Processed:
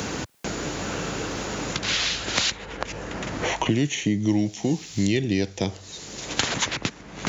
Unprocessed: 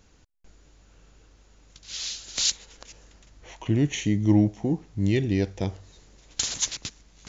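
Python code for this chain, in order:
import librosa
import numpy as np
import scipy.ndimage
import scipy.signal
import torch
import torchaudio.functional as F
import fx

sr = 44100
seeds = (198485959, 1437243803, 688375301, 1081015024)

y = scipy.signal.sosfilt(scipy.signal.butter(2, 120.0, 'highpass', fs=sr, output='sos'), x)
y = fx.band_squash(y, sr, depth_pct=100)
y = y * librosa.db_to_amplitude(3.5)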